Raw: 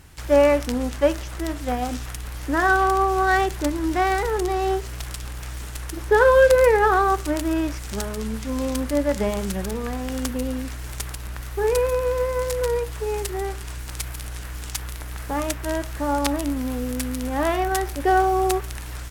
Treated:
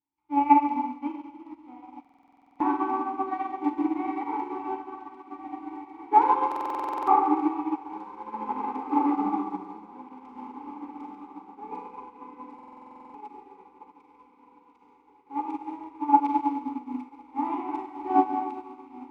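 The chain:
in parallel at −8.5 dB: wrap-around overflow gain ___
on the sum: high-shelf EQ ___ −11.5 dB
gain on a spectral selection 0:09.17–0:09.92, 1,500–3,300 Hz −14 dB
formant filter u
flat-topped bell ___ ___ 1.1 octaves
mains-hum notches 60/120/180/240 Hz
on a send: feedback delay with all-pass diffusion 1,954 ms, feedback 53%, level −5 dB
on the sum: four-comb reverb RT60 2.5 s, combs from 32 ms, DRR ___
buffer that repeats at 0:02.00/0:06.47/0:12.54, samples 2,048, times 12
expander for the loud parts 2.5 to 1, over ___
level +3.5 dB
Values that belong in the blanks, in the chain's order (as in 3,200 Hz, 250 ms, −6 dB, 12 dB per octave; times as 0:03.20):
6.5 dB, 6,100 Hz, 1,100 Hz, +9 dB, −3 dB, −41 dBFS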